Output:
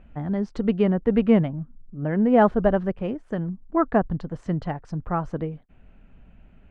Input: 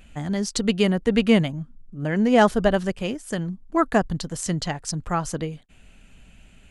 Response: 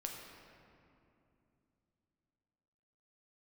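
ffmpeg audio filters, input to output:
-af "lowpass=1300"

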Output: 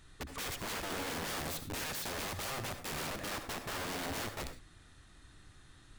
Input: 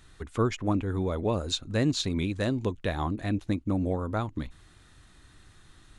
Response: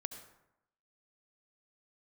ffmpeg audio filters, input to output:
-filter_complex "[0:a]aeval=exprs='(mod(35.5*val(0)+1,2)-1)/35.5':channel_layout=same[link_01];[1:a]atrim=start_sample=2205,afade=type=out:start_time=0.18:duration=0.01,atrim=end_sample=8379,asetrate=48510,aresample=44100[link_02];[link_01][link_02]afir=irnorm=-1:irlink=0"

